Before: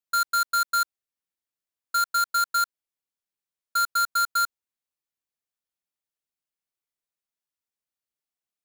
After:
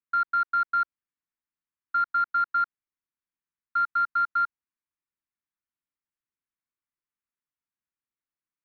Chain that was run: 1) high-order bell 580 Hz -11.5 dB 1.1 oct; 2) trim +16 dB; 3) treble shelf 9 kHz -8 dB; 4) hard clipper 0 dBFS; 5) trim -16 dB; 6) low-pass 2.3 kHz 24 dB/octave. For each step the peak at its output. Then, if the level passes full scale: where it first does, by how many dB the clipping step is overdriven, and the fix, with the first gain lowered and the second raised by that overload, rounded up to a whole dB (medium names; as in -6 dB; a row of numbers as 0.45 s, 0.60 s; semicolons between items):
-17.5 dBFS, -1.5 dBFS, -3.0 dBFS, -3.0 dBFS, -19.0 dBFS, -19.5 dBFS; nothing clips